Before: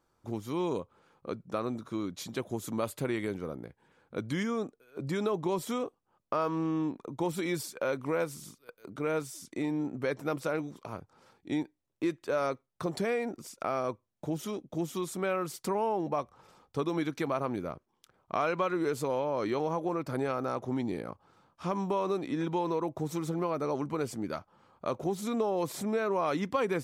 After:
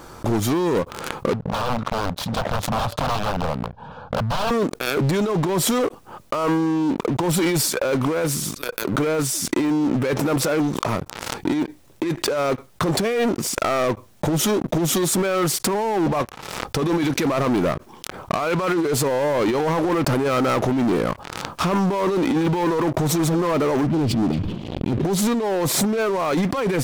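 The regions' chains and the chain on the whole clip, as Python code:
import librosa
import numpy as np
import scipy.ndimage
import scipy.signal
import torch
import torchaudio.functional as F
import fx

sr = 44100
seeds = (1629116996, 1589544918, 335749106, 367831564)

y = fx.chain(x, sr, fx.overflow_wrap(gain_db=31.0),
    fx.air_absorb(metres=300.0),
    fx.fixed_phaser(hz=840.0, stages=4), at=(1.33, 4.51))
y = fx.chain(y, sr, fx.cheby2_bandstop(low_hz=690.0, high_hz=1400.0, order=4, stop_db=60),
    fx.air_absorb(metres=420.0),
    fx.sustainer(db_per_s=51.0), at=(23.87, 25.05))
y = fx.over_compress(y, sr, threshold_db=-33.0, ratio=-0.5)
y = fx.leveller(y, sr, passes=5)
y = fx.pre_swell(y, sr, db_per_s=44.0)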